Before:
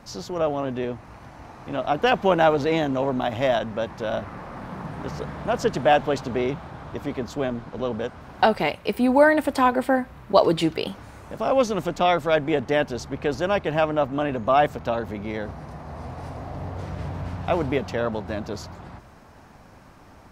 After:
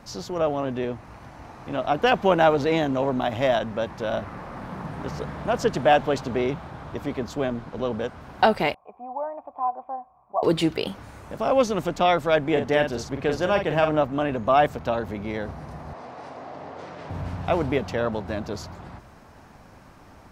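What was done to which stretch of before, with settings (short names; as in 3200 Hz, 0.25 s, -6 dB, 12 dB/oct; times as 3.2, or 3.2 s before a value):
8.74–10.43 vocal tract filter a
12.51–14.01 doubler 46 ms -6.5 dB
15.93–17.1 BPF 310–6200 Hz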